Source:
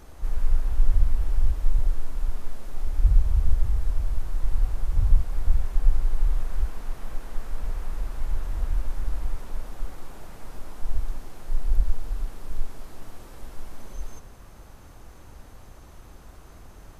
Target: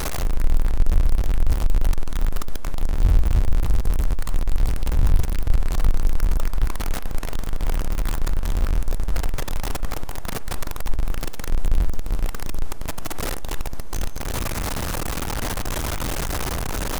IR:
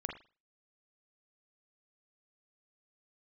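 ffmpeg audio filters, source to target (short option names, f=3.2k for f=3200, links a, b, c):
-filter_complex "[0:a]aeval=exprs='val(0)+0.5*0.0841*sgn(val(0))':c=same,asplit=2[a][b];[1:a]atrim=start_sample=2205[c];[b][c]afir=irnorm=-1:irlink=0,volume=-10.5dB[d];[a][d]amix=inputs=2:normalize=0,aeval=exprs='(tanh(3.55*val(0)+0.45)-tanh(0.45))/3.55':c=same,volume=2dB"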